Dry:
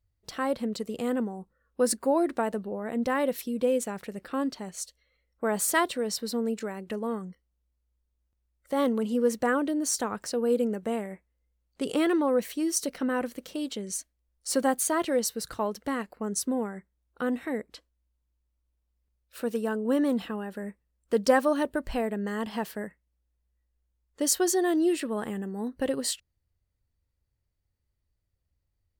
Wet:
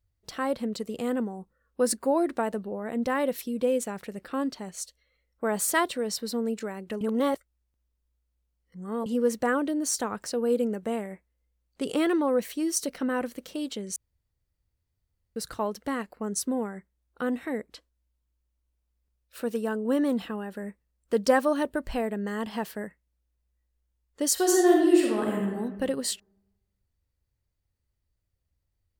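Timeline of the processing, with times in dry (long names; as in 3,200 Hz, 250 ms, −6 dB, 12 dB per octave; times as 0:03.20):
0:07.01–0:09.06: reverse
0:13.96–0:15.36: fill with room tone
0:24.33–0:25.50: thrown reverb, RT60 1.2 s, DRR −1.5 dB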